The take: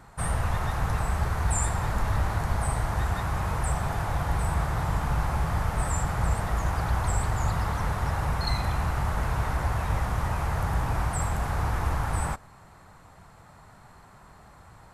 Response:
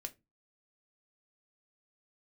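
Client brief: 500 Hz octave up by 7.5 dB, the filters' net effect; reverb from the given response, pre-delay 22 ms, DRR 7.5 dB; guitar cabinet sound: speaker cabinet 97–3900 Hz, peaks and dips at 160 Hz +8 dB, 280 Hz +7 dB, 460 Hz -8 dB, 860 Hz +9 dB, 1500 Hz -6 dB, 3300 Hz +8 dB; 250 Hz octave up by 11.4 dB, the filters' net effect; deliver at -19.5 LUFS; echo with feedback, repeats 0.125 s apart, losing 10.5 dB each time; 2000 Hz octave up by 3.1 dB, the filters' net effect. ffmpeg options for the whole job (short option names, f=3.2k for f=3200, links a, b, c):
-filter_complex "[0:a]equalizer=f=250:t=o:g=9,equalizer=f=500:t=o:g=9,equalizer=f=2k:t=o:g=6,aecho=1:1:125|250|375:0.299|0.0896|0.0269,asplit=2[a][b];[1:a]atrim=start_sample=2205,adelay=22[c];[b][c]afir=irnorm=-1:irlink=0,volume=-4.5dB[d];[a][d]amix=inputs=2:normalize=0,highpass=97,equalizer=f=160:t=q:w=4:g=8,equalizer=f=280:t=q:w=4:g=7,equalizer=f=460:t=q:w=4:g=-8,equalizer=f=860:t=q:w=4:g=9,equalizer=f=1.5k:t=q:w=4:g=-6,equalizer=f=3.3k:t=q:w=4:g=8,lowpass=f=3.9k:w=0.5412,lowpass=f=3.9k:w=1.3066,volume=3.5dB"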